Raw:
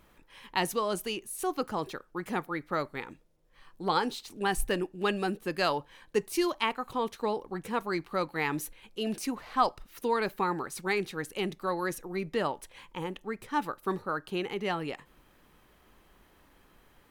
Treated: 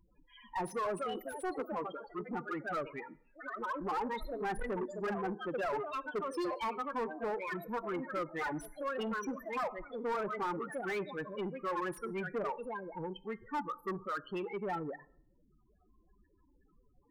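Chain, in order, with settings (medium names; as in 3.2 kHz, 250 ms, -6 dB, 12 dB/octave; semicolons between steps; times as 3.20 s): ever faster or slower copies 365 ms, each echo +3 st, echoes 3, each echo -6 dB; loudest bins only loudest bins 8; on a send at -18.5 dB: reverberation RT60 0.65 s, pre-delay 5 ms; on the sum: saturation -29 dBFS, distortion -11 dB; tilt shelf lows -4 dB, about 720 Hz; slew-rate limiter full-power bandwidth 29 Hz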